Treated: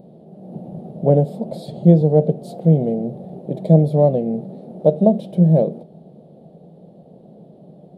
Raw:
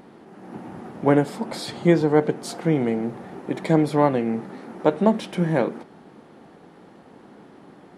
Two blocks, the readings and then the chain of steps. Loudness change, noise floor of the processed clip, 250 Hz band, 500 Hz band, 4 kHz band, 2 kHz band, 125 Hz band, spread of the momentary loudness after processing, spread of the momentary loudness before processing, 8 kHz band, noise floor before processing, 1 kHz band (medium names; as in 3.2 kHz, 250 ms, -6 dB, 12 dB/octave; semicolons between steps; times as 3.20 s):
+5.0 dB, -46 dBFS, +4.0 dB, +4.5 dB, under -10 dB, under -20 dB, +10.5 dB, 20 LU, 19 LU, under -10 dB, -49 dBFS, -3.5 dB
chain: FFT filter 110 Hz 0 dB, 160 Hz +11 dB, 290 Hz -6 dB, 630 Hz +7 dB, 940 Hz -17 dB, 1.4 kHz -27 dB, 2 kHz -26 dB, 3.8 kHz -9 dB, 5.9 kHz -20 dB, 13 kHz -7 dB; trim +1.5 dB